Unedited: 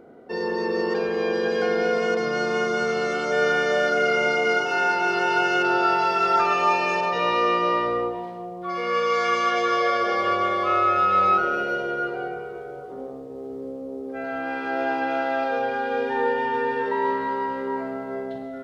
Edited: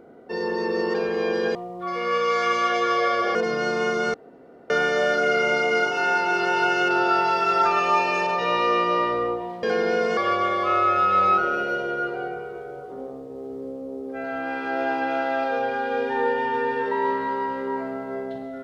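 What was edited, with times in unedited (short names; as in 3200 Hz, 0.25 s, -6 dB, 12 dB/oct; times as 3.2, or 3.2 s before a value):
1.55–2.09 swap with 8.37–10.17
2.88–3.44 room tone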